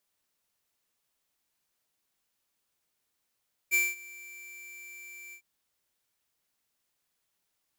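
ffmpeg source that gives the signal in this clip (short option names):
-f lavfi -i "aevalsrc='0.0668*(2*lt(mod(2340*t,1),0.5)-1)':d=1.703:s=44100,afade=t=in:d=0.033,afade=t=out:st=0.033:d=0.207:silence=0.0708,afade=t=out:st=1.62:d=0.083"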